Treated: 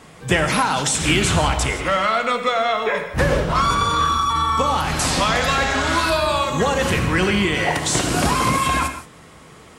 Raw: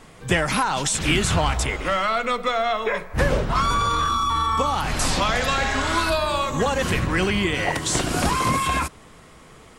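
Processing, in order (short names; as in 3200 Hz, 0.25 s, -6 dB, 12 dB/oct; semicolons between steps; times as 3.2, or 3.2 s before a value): HPF 57 Hz; non-linear reverb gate 0.2 s flat, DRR 7 dB; gain +2.5 dB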